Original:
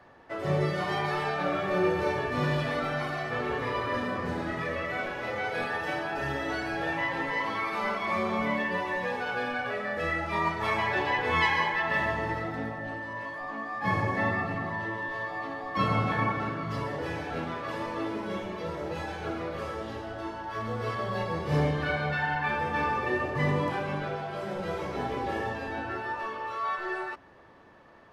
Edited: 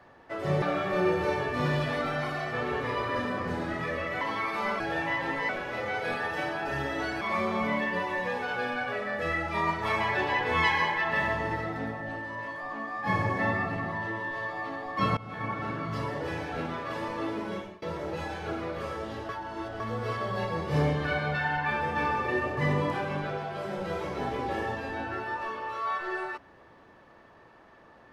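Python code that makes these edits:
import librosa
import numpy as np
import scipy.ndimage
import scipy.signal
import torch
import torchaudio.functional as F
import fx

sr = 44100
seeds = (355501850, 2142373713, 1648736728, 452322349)

y = fx.edit(x, sr, fx.cut(start_s=0.62, length_s=0.78),
    fx.swap(start_s=4.99, length_s=1.72, other_s=7.4, other_length_s=0.59),
    fx.fade_in_from(start_s=15.95, length_s=0.63, floor_db=-23.0),
    fx.fade_out_to(start_s=18.27, length_s=0.33, floor_db=-24.0),
    fx.reverse_span(start_s=20.07, length_s=0.51), tone=tone)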